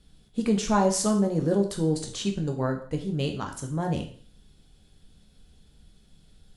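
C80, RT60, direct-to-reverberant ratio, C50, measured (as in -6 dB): 13.0 dB, 0.45 s, 3.0 dB, 9.5 dB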